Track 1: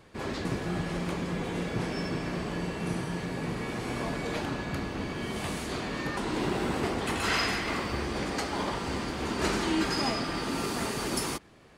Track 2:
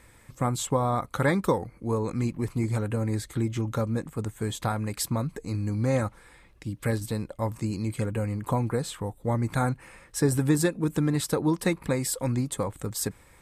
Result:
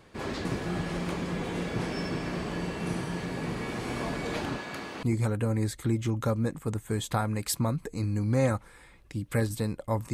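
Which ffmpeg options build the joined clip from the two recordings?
-filter_complex "[0:a]asettb=1/sr,asplit=3[a][b][c];[a]atrim=end=4.584[d];[b]atrim=start=4.58:end=5.03,asetpts=PTS-STARTPTS,afade=t=in:d=0.004:c=qsin,afade=t=out:st=0.446:d=0.004:c=qsin,highpass=f=510:p=1[e];[c]atrim=start=5.026[f];[d][e]acrossfade=d=0.004:c1=hsin:c2=qsin[g];[g][f]acrossfade=d=0.004:c1=qsin:c2=hsin,apad=whole_dur=10.13,atrim=end=10.13,atrim=end=5.032[h];[1:a]atrim=start=2.538:end=7.64[i];[h][i]acrossfade=d=0.004:c1=hsin:c2=hsin"

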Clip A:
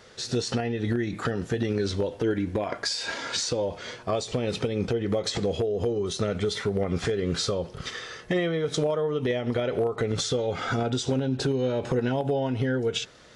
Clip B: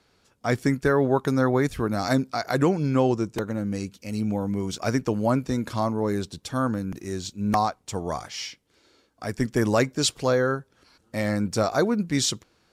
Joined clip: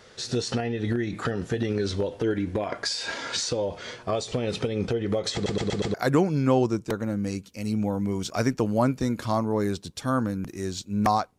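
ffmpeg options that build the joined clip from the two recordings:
-filter_complex "[0:a]apad=whole_dur=11.38,atrim=end=11.38,asplit=5[a][b][c][d][e];[a]atrim=end=5.462[f];[b]atrim=start=5.338:end=5.462[g];[c]atrim=start=5.338:end=5.462[h];[d]atrim=start=5.338:end=5.462[i];[e]atrim=start=5.338:end=5.462[j];[1:a]atrim=start=2.418:end=7.86[k];[f][g]acrossfade=d=0.004:c1=hsin:c2=hsin[l];[l][h]acrossfade=d=0.004:c1=hsin:c2=hsin[m];[m][i]acrossfade=d=0.004:c1=hsin:c2=hsin[n];[n][j]acrossfade=d=0.004:c1=hsin:c2=hsin[o];[o][k]acrossfade=d=0.004:c1=hsin:c2=hsin"

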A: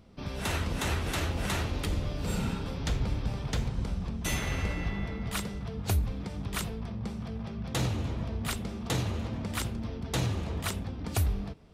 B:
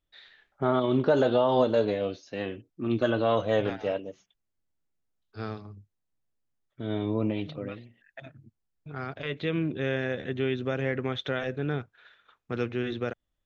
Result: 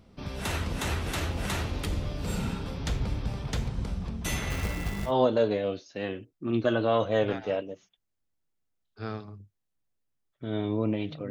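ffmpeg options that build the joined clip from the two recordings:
-filter_complex "[0:a]asettb=1/sr,asplit=3[a][b][c];[a]atrim=end=4.504[d];[b]atrim=start=4.5:end=5.13,asetpts=PTS-STARTPTS,afade=t=in:d=0.004:c=qsin,afade=t=out:st=0.626:d=0.004:c=qsin,acrusher=bits=3:mode=log:mix=0:aa=0.000001[e];[c]atrim=start=5.126[f];[d][e]acrossfade=d=0.004:c1=hsin:c2=qsin[g];[g][f]acrossfade=d=0.004:c1=qsin:c2=hsin,apad=whole_dur=11.3,atrim=end=11.3,atrim=end=5.13,asetpts=PTS-STARTPTS[h];[1:a]atrim=start=1.42:end=7.67,asetpts=PTS-STARTPTS[i];[h][i]acrossfade=d=0.08:c1=tri:c2=tri"

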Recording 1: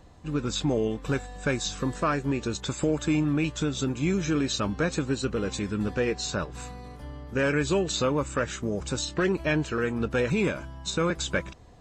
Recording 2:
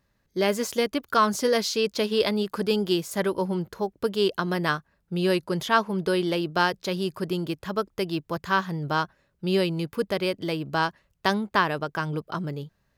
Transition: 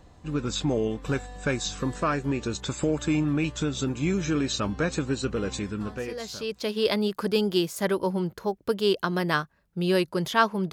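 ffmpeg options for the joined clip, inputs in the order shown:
-filter_complex "[0:a]apad=whole_dur=10.72,atrim=end=10.72,atrim=end=6.95,asetpts=PTS-STARTPTS[a];[1:a]atrim=start=0.9:end=6.07,asetpts=PTS-STARTPTS[b];[a][b]acrossfade=d=1.4:c1=qua:c2=qua"

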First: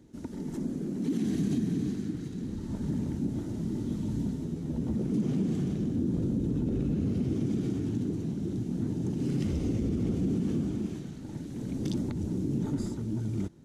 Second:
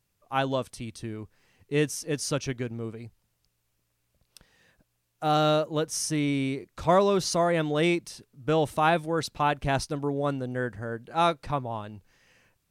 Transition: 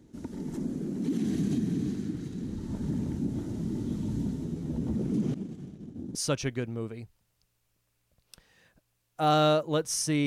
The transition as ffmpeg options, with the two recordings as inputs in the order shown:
-filter_complex "[0:a]asettb=1/sr,asplit=3[a][b][c];[a]atrim=end=5.344[d];[b]atrim=start=5.34:end=6.15,asetpts=PTS-STARTPTS,afade=t=in:d=0.004:c=qsin,afade=t=out:st=0.806:d=0.004:c=qsin,agate=range=-33dB:threshold=-21dB:ratio=3:release=100:detection=peak[e];[c]atrim=start=6.146[f];[d][e]acrossfade=d=0.004:c1=hsin:c2=qsin[g];[g][f]acrossfade=d=0.004:c1=qsin:c2=hsin,apad=whole_dur=10.26,atrim=end=10.26,atrim=end=6.152[h];[1:a]atrim=start=2.178:end=6.29[i];[h][i]acrossfade=d=0.004:c1=hsin:c2=hsin"

